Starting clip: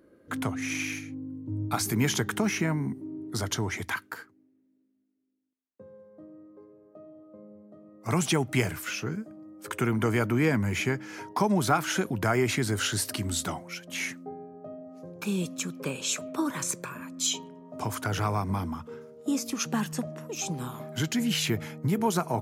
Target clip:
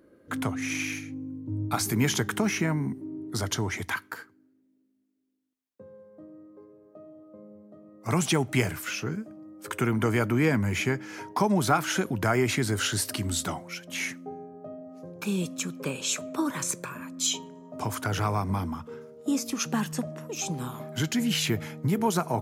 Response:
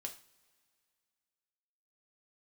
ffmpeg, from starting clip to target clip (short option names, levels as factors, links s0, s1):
-filter_complex "[0:a]asplit=2[s0][s1];[1:a]atrim=start_sample=2205,afade=t=out:st=0.45:d=0.01,atrim=end_sample=20286[s2];[s1][s2]afir=irnorm=-1:irlink=0,volume=0.168[s3];[s0][s3]amix=inputs=2:normalize=0"